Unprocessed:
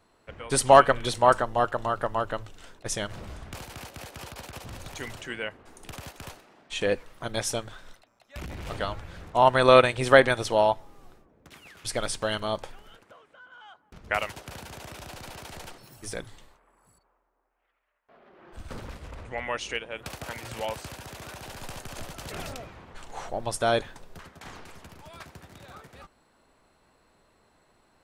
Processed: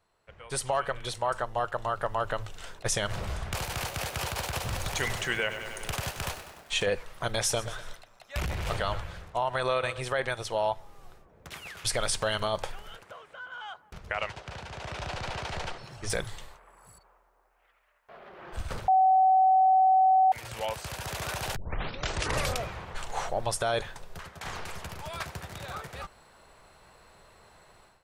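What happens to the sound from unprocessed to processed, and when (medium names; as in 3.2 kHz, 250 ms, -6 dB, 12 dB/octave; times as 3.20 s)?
3.45–6.86 s: bit-crushed delay 98 ms, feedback 80%, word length 9-bit, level -13 dB
7.40–10.01 s: feedback delay 121 ms, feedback 42%, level -19 dB
14.14–16.10 s: distance through air 110 m
18.88–20.32 s: bleep 757 Hz -7 dBFS
21.56 s: tape start 1.03 s
whole clip: peaking EQ 270 Hz -11 dB 0.76 oct; level rider gain up to 16.5 dB; peak limiter -10 dBFS; trim -7.5 dB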